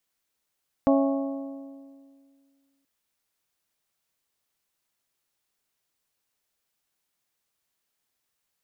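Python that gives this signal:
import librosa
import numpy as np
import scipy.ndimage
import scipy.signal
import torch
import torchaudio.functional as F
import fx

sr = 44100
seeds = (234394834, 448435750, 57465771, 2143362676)

y = fx.strike_metal(sr, length_s=1.98, level_db=-17.5, body='bell', hz=275.0, decay_s=2.12, tilt_db=3.5, modes=5)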